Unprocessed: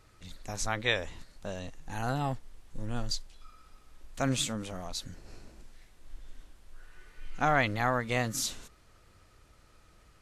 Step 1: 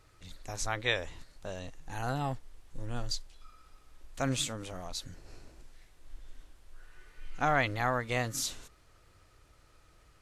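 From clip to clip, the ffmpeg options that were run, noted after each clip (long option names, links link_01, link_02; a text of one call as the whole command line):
ffmpeg -i in.wav -af "equalizer=frequency=210:width_type=o:width=0.22:gain=-10.5,volume=-1.5dB" out.wav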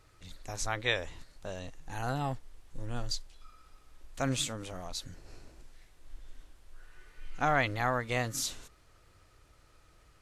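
ffmpeg -i in.wav -af anull out.wav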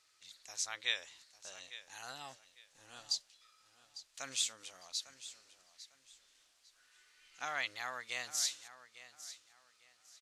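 ffmpeg -i in.wav -af "bandpass=frequency=5400:width_type=q:width=0.9:csg=0,aecho=1:1:851|1702|2553:0.178|0.0445|0.0111,volume=1.5dB" out.wav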